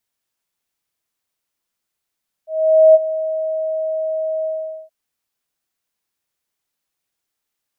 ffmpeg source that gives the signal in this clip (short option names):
-f lavfi -i "aevalsrc='0.631*sin(2*PI*634*t)':d=2.424:s=44100,afade=t=in:d=0.476,afade=t=out:st=0.476:d=0.033:silence=0.188,afade=t=out:st=1.98:d=0.444"